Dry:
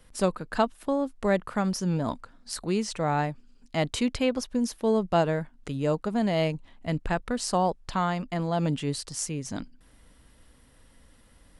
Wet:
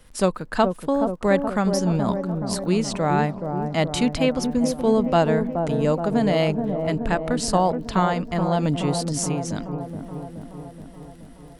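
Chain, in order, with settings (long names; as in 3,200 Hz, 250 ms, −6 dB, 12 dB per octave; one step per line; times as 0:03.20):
surface crackle 35 per second −47 dBFS
on a send: delay with a low-pass on its return 425 ms, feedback 64%, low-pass 820 Hz, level −5 dB
on the sum: level +4.5 dB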